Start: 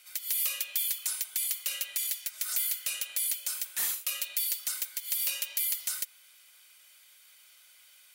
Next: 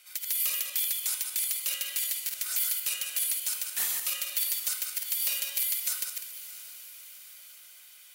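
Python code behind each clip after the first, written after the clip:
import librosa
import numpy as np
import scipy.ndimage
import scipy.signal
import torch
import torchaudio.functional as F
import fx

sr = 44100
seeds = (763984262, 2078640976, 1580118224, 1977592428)

y = fx.reverse_delay_fb(x, sr, ms=100, feedback_pct=43, wet_db=-4)
y = fx.echo_diffused(y, sr, ms=650, feedback_pct=56, wet_db=-14.0)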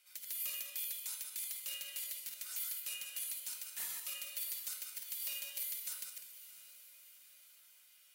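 y = fx.comb_fb(x, sr, f0_hz=190.0, decay_s=0.47, harmonics='odd', damping=0.0, mix_pct=80)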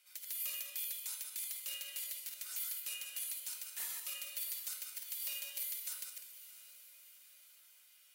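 y = scipy.signal.sosfilt(scipy.signal.butter(2, 220.0, 'highpass', fs=sr, output='sos'), x)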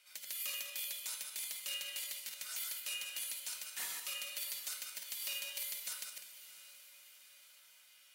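y = fx.high_shelf(x, sr, hz=9900.0, db=-11.0)
y = F.gain(torch.from_numpy(y), 5.5).numpy()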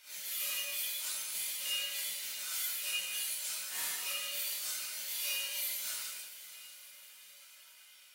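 y = fx.phase_scramble(x, sr, seeds[0], window_ms=200)
y = F.gain(torch.from_numpy(y), 5.0).numpy()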